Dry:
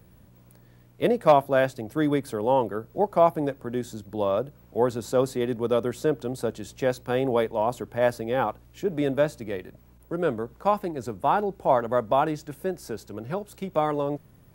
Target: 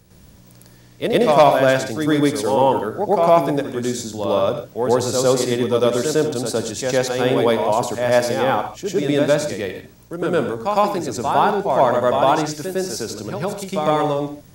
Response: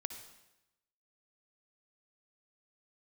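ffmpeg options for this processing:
-filter_complex "[0:a]equalizer=f=5900:w=0.74:g=12,acontrast=23,asplit=2[s0][s1];[1:a]atrim=start_sample=2205,atrim=end_sample=6615,adelay=106[s2];[s1][s2]afir=irnorm=-1:irlink=0,volume=2.24[s3];[s0][s3]amix=inputs=2:normalize=0,volume=0.596"

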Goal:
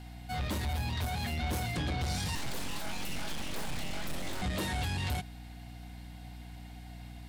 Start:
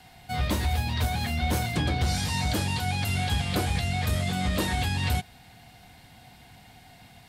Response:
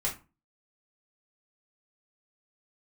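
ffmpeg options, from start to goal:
-filter_complex "[0:a]asoftclip=type=tanh:threshold=0.0501,aeval=exprs='val(0)+0.00794*(sin(2*PI*60*n/s)+sin(2*PI*2*60*n/s)/2+sin(2*PI*3*60*n/s)/3+sin(2*PI*4*60*n/s)/4+sin(2*PI*5*60*n/s)/5)':c=same,asettb=1/sr,asplit=3[s0][s1][s2];[s0]atrim=end=2.354[s3];[s1]atrim=start=2.35:end=4.42,asetpts=PTS-STARTPTS,afade=t=in:d=0.004:c=qsin,afade=t=out:st=2.066:d=0.004:c=qsin,aeval=exprs='abs(val(0))':c=same[s4];[s2]atrim=start=4.416[s5];[s3][s4]acrossfade=d=0.004:c1=hsin:c2=qsin[s6];[s6][s5]acrossfade=d=0.004:c1=qsin:c2=hsin,volume=0.708"

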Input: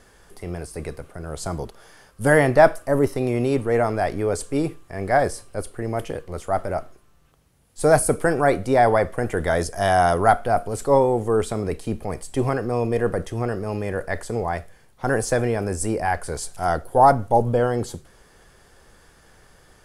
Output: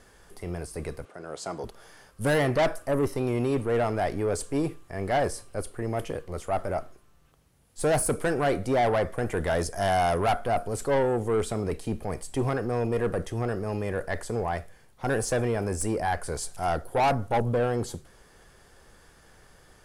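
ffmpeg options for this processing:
-filter_complex "[0:a]asoftclip=type=tanh:threshold=0.15,asettb=1/sr,asplit=3[s0][s1][s2];[s0]atrim=end=1.054[s3];[s1]atrim=start=1.05:end=1.64,asetpts=PTS-STARTPTS,afade=t=in:d=0.004:c=qsin,afade=t=out:st=0.586:d=0.004:c=qsin,highpass=260,lowpass=7200[s4];[s2]atrim=start=1.636[s5];[s3][s4]acrossfade=d=0.004:c1=hsin:c2=qsin[s6];[s6][s5]acrossfade=d=0.004:c1=qsin:c2=hsin,volume=0.75"

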